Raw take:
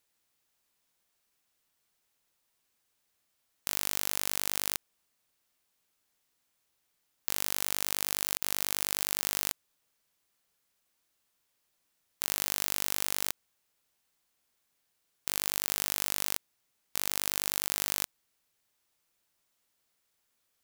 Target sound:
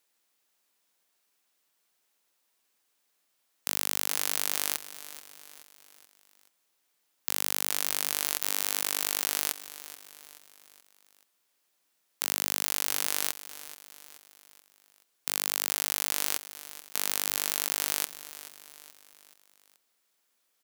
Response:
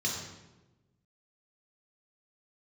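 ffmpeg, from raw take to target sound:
-filter_complex "[0:a]highpass=230,asplit=2[link_01][link_02];[link_02]aecho=0:1:429|858|1287|1716:0.178|0.0854|0.041|0.0197[link_03];[link_01][link_03]amix=inputs=2:normalize=0,volume=2.5dB"

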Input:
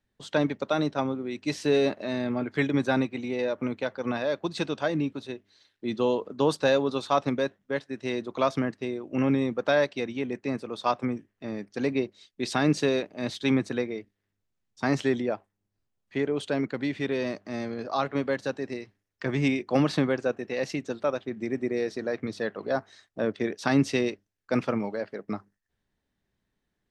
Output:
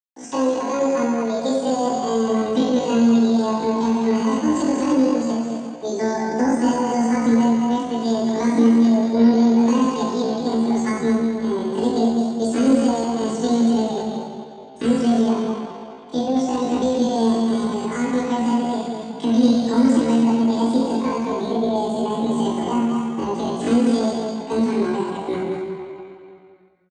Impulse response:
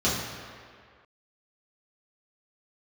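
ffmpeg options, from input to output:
-filter_complex "[0:a]asubboost=boost=7:cutoff=120,acrossover=split=400|3200[link_01][link_02][link_03];[link_01]acompressor=threshold=-30dB:ratio=4[link_04];[link_02]acompressor=threshold=-41dB:ratio=4[link_05];[link_03]acompressor=threshold=-45dB:ratio=4[link_06];[link_04][link_05][link_06]amix=inputs=3:normalize=0,aecho=1:1:201:0.501,aresample=11025,aeval=exprs='val(0)*gte(abs(val(0)),0.00188)':channel_layout=same,aresample=44100[link_07];[1:a]atrim=start_sample=2205,asetrate=32634,aresample=44100[link_08];[link_07][link_08]afir=irnorm=-1:irlink=0,asetrate=78577,aresample=44100,atempo=0.561231,volume=-8dB"

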